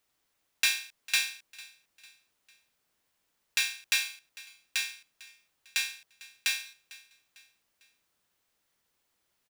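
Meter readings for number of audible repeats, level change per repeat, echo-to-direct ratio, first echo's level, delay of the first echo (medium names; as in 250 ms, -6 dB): 2, -7.5 dB, -19.5 dB, -20.5 dB, 450 ms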